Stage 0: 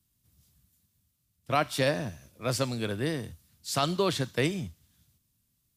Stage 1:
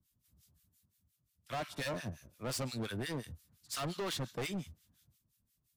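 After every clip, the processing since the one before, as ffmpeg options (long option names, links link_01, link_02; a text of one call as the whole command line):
ffmpeg -i in.wav -filter_complex "[0:a]acrossover=split=1200[link_01][link_02];[link_01]aeval=exprs='val(0)*(1-1/2+1/2*cos(2*PI*5.7*n/s))':channel_layout=same[link_03];[link_02]aeval=exprs='val(0)*(1-1/2-1/2*cos(2*PI*5.7*n/s))':channel_layout=same[link_04];[link_03][link_04]amix=inputs=2:normalize=0,volume=34.5dB,asoftclip=hard,volume=-34.5dB" out.wav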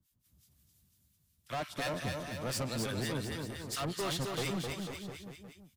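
ffmpeg -i in.wav -af "aecho=1:1:260|494|704.6|894.1|1065:0.631|0.398|0.251|0.158|0.1,volume=1.5dB" out.wav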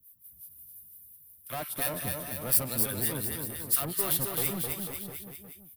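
ffmpeg -i in.wav -af "aexciter=amount=13.2:drive=6.5:freq=9700" out.wav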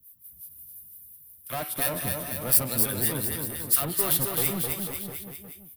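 ffmpeg -i in.wav -af "bandreject=frequency=106.9:width_type=h:width=4,bandreject=frequency=213.8:width_type=h:width=4,bandreject=frequency=320.7:width_type=h:width=4,bandreject=frequency=427.6:width_type=h:width=4,bandreject=frequency=534.5:width_type=h:width=4,bandreject=frequency=641.4:width_type=h:width=4,bandreject=frequency=748.3:width_type=h:width=4,bandreject=frequency=855.2:width_type=h:width=4,bandreject=frequency=962.1:width_type=h:width=4,bandreject=frequency=1069:width_type=h:width=4,bandreject=frequency=1175.9:width_type=h:width=4,bandreject=frequency=1282.8:width_type=h:width=4,bandreject=frequency=1389.7:width_type=h:width=4,bandreject=frequency=1496.6:width_type=h:width=4,bandreject=frequency=1603.5:width_type=h:width=4,bandreject=frequency=1710.4:width_type=h:width=4,bandreject=frequency=1817.3:width_type=h:width=4,bandreject=frequency=1924.2:width_type=h:width=4,bandreject=frequency=2031.1:width_type=h:width=4,bandreject=frequency=2138:width_type=h:width=4,bandreject=frequency=2244.9:width_type=h:width=4,bandreject=frequency=2351.8:width_type=h:width=4,bandreject=frequency=2458.7:width_type=h:width=4,bandreject=frequency=2565.6:width_type=h:width=4,bandreject=frequency=2672.5:width_type=h:width=4,bandreject=frequency=2779.4:width_type=h:width=4,bandreject=frequency=2886.3:width_type=h:width=4,bandreject=frequency=2993.2:width_type=h:width=4,bandreject=frequency=3100.1:width_type=h:width=4,bandreject=frequency=3207:width_type=h:width=4,bandreject=frequency=3313.9:width_type=h:width=4,bandreject=frequency=3420.8:width_type=h:width=4,bandreject=frequency=3527.7:width_type=h:width=4,bandreject=frequency=3634.6:width_type=h:width=4,bandreject=frequency=3741.5:width_type=h:width=4,bandreject=frequency=3848.4:width_type=h:width=4,bandreject=frequency=3955.3:width_type=h:width=4,volume=4dB" out.wav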